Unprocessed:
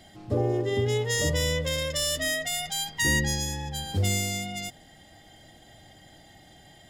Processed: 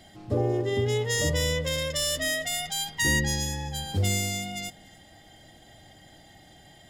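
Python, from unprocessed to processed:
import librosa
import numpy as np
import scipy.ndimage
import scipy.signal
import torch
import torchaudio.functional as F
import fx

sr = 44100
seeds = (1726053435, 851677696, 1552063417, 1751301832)

y = x + 10.0 ** (-22.5 / 20.0) * np.pad(x, (int(286 * sr / 1000.0), 0))[:len(x)]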